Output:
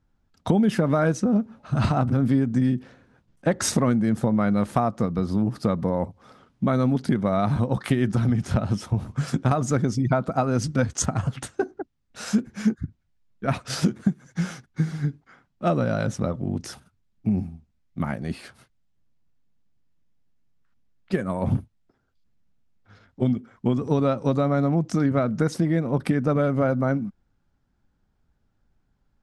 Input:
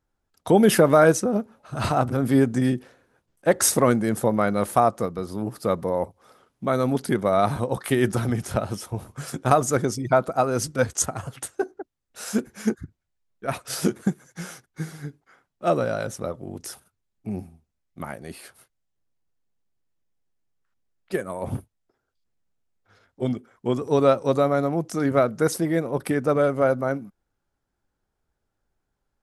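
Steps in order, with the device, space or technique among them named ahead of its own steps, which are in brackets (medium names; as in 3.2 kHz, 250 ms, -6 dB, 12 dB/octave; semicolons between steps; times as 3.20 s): jukebox (low-pass 5.8 kHz 12 dB/octave; resonant low shelf 300 Hz +6.5 dB, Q 1.5; compression 5:1, threshold -22 dBFS, peak gain reduction 14 dB); trim +3.5 dB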